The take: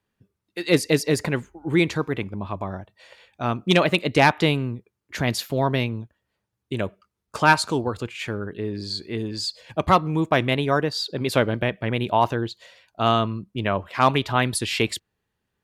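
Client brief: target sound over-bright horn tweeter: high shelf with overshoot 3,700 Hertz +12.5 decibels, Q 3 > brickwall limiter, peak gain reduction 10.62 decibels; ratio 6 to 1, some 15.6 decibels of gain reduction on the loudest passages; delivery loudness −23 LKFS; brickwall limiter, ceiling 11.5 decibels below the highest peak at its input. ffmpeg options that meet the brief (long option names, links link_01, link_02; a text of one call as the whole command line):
ffmpeg -i in.wav -af "acompressor=threshold=-29dB:ratio=6,alimiter=level_in=2dB:limit=-24dB:level=0:latency=1,volume=-2dB,highshelf=frequency=3700:width_type=q:width=3:gain=12.5,volume=10dB,alimiter=limit=-8.5dB:level=0:latency=1" out.wav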